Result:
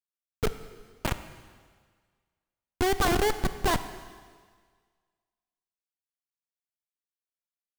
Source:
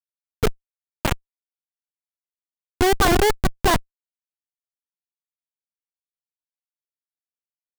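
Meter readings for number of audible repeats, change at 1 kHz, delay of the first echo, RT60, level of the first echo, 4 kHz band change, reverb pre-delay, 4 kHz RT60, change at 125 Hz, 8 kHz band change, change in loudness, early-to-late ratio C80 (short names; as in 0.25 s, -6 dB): none, -7.0 dB, none, 1.7 s, none, -7.0 dB, 23 ms, 1.7 s, -7.5 dB, -7.0 dB, -7.0 dB, 13.0 dB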